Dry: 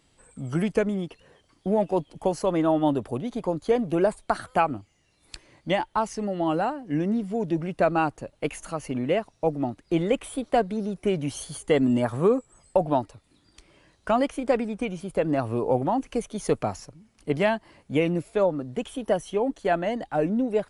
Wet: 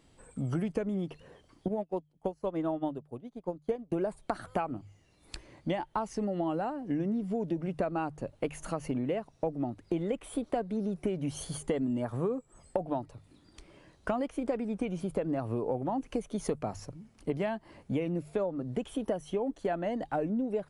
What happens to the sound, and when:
0:01.68–0:03.92: expander for the loud parts 2.5 to 1, over −36 dBFS
whole clip: tilt shelving filter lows +3.5 dB, about 1,100 Hz; mains-hum notches 50/100/150 Hz; downward compressor 6 to 1, threshold −29 dBFS

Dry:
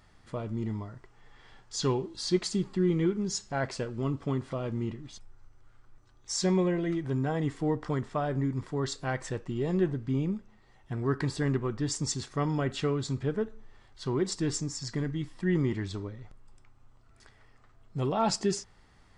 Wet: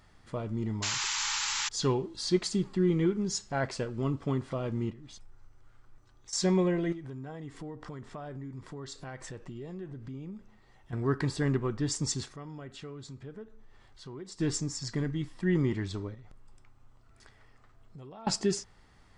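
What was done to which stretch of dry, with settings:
0:00.82–0:01.69: sound drawn into the spectrogram noise 810–7,700 Hz −32 dBFS
0:04.90–0:06.33: downward compressor 10 to 1, threshold −44 dBFS
0:06.92–0:10.93: downward compressor 4 to 1, threshold −40 dBFS
0:12.31–0:14.40: downward compressor 2 to 1, threshold −52 dBFS
0:16.14–0:18.27: downward compressor, threshold −46 dBFS

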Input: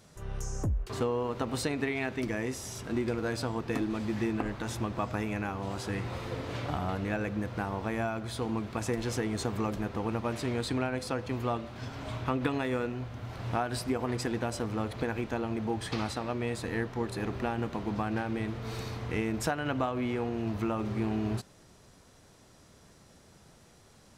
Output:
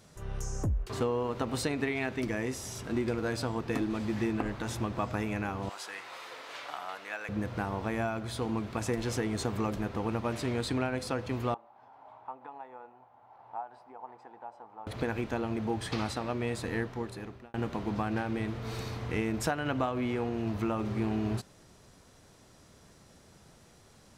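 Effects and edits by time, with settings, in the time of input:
0:05.69–0:07.29: high-pass filter 920 Hz
0:11.54–0:14.87: resonant band-pass 850 Hz, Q 7.2
0:16.75–0:17.54: fade out

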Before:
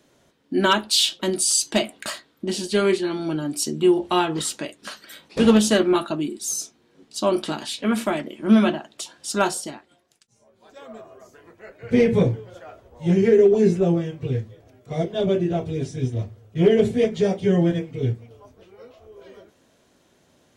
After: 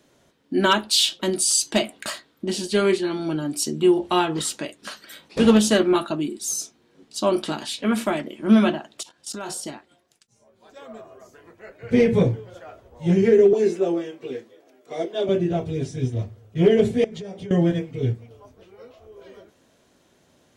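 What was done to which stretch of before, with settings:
0:09.01–0:09.61: output level in coarse steps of 16 dB
0:13.53–0:15.29: Chebyshev high-pass filter 290 Hz, order 3
0:17.04–0:17.51: downward compressor 16 to 1, threshold −31 dBFS

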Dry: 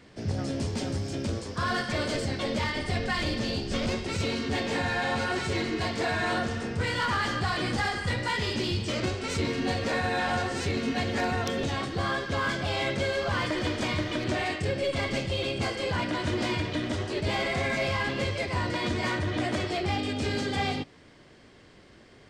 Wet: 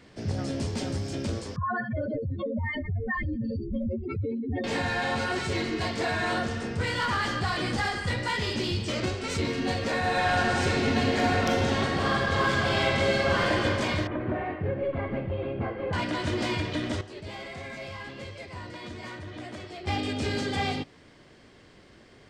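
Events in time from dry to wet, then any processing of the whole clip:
0:01.56–0:04.64: expanding power law on the bin magnitudes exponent 3.9
0:09.98–0:13.49: thrown reverb, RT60 2.9 s, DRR −2.5 dB
0:14.07–0:15.93: Bessel low-pass filter 1,300 Hz, order 4
0:17.01–0:19.87: clip gain −11 dB

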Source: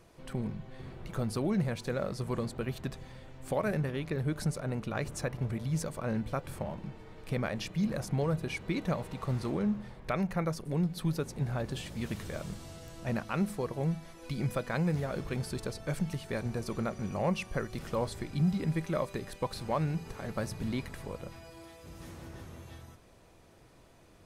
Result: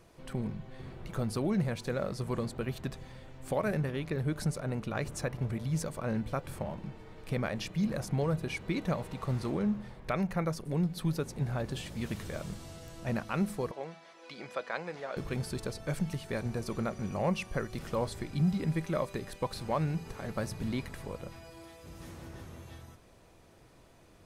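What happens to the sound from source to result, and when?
0:13.71–0:15.17: band-pass filter 500–5,000 Hz

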